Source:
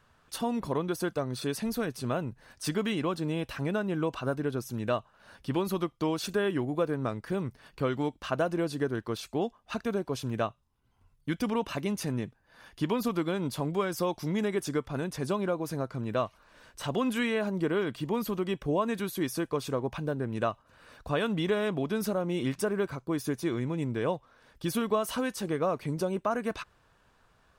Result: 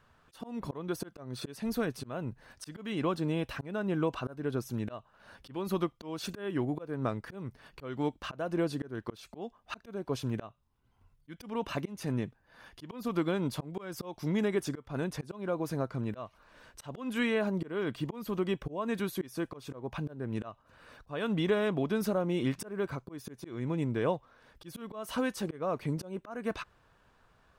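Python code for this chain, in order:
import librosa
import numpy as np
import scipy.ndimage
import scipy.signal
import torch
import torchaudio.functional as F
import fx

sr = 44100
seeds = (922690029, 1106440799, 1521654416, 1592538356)

y = fx.peak_eq(x, sr, hz=9800.0, db=-4.5, octaves=2.2)
y = fx.auto_swell(y, sr, attack_ms=262.0)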